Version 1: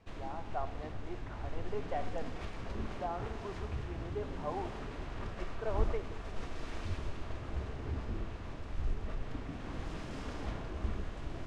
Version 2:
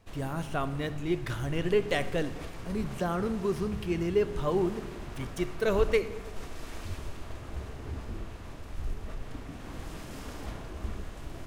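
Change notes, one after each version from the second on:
speech: remove band-pass filter 790 Hz, Q 3.7; master: remove distance through air 91 m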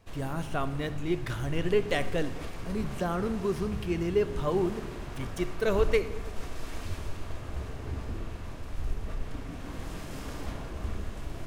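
background: send +8.0 dB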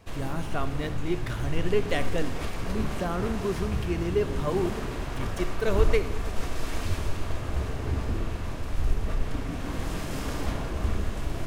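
background +7.0 dB

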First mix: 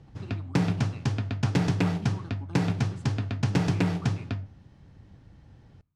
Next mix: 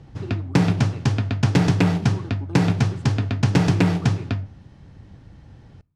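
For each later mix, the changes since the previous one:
speech: add peaking EQ 390 Hz +12.5 dB 1.3 oct; background +7.0 dB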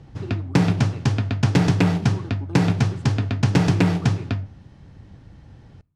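no change

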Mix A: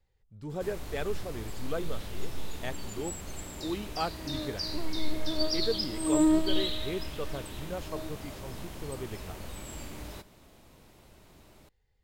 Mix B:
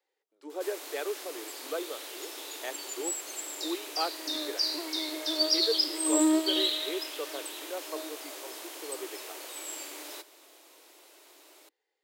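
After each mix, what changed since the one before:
background: add treble shelf 2.4 kHz +8.5 dB; master: add steep high-pass 300 Hz 72 dB/octave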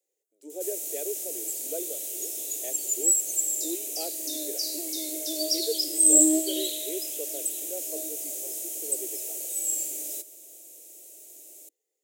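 master: add FFT filter 640 Hz 0 dB, 1.1 kHz -28 dB, 2.4 kHz -7 dB, 4.6 kHz -6 dB, 6.8 kHz +13 dB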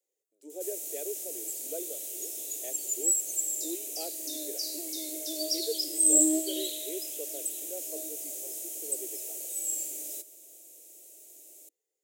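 speech -3.5 dB; background -4.0 dB

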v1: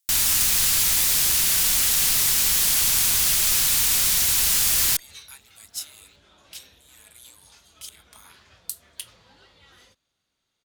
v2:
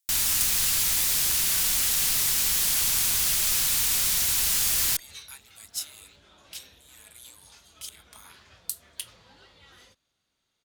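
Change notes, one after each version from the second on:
first sound -4.0 dB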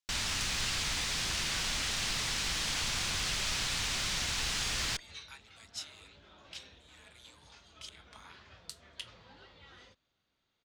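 master: add distance through air 130 m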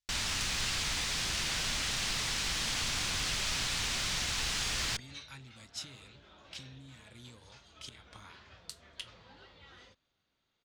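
speech: remove high-pass 690 Hz 24 dB/octave

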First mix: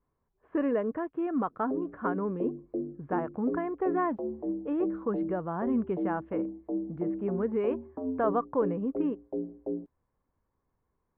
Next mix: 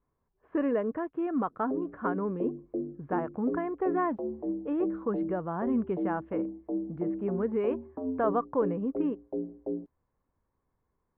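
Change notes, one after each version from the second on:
no change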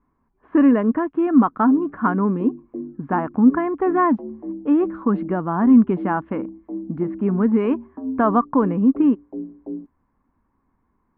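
speech +10.0 dB; master: add graphic EQ 125/250/500/1000 Hz -5/+10/-9/+4 dB

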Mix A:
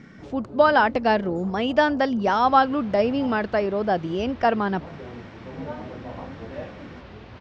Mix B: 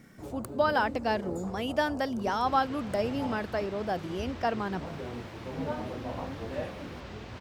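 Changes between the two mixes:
speech -9.0 dB; master: remove Bessel low-pass 3.9 kHz, order 8

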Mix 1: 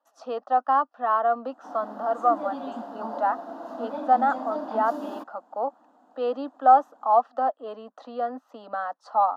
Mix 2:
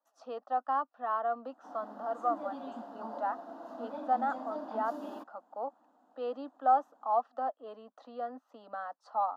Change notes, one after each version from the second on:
speech -9.5 dB; background -8.0 dB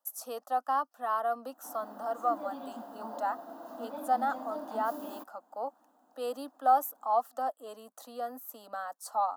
speech: remove distance through air 250 m; master: remove distance through air 82 m

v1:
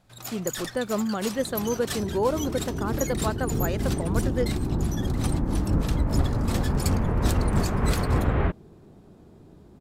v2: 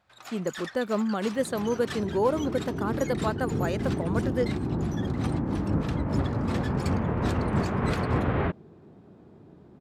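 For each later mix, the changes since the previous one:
first sound: add band-pass filter 1.5 kHz, Q 0.75; master: add high-pass 98 Hz 12 dB/octave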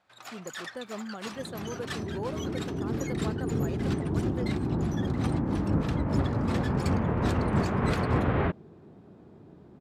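speech -11.5 dB

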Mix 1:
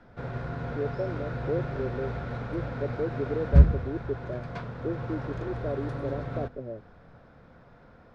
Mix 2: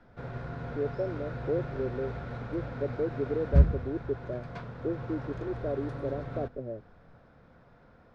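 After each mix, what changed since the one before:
background -4.0 dB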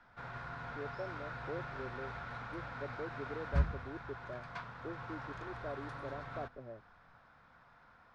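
master: add resonant low shelf 690 Hz -11 dB, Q 1.5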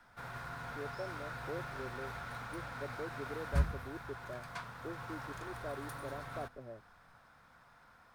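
background: remove Gaussian low-pass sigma 1.7 samples

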